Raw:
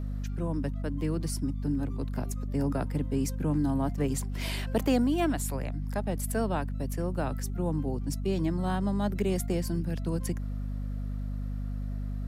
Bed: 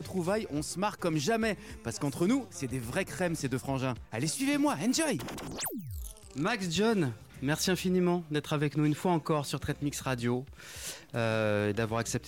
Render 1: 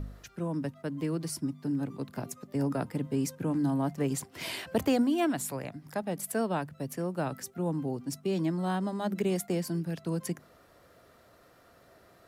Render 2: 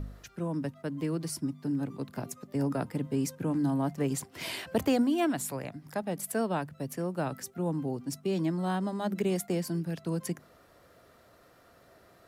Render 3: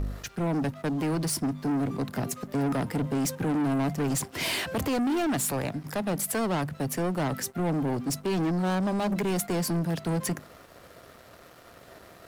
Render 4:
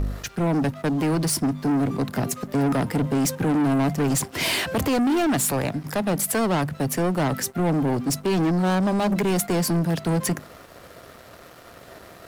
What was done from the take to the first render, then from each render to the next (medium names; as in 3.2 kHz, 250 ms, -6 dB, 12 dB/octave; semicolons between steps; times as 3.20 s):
de-hum 50 Hz, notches 5
no audible change
peak limiter -23 dBFS, peak gain reduction 6.5 dB; waveshaping leveller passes 3
trim +5.5 dB